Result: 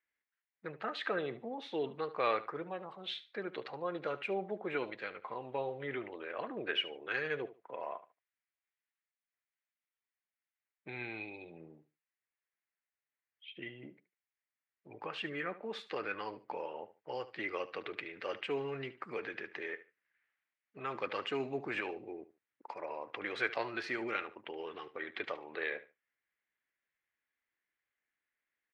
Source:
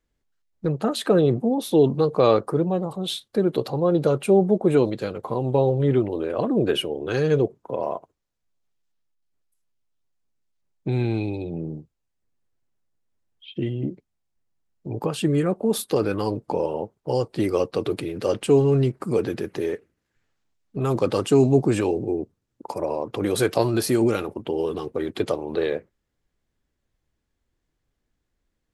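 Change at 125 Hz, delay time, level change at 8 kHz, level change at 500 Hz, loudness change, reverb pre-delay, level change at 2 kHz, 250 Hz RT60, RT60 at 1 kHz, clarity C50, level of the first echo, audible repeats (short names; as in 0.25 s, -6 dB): -28.5 dB, 73 ms, under -30 dB, -18.0 dB, -16.5 dB, none, -1.5 dB, none, none, none, -16.0 dB, 2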